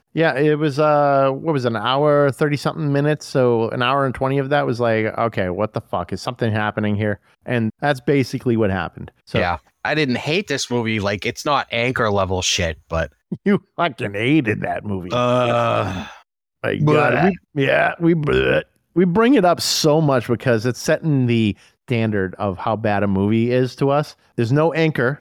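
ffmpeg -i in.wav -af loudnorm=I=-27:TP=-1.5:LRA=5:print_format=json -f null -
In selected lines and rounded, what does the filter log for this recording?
"input_i" : "-19.0",
"input_tp" : "-4.0",
"input_lra" : "3.8",
"input_thresh" : "-29.1",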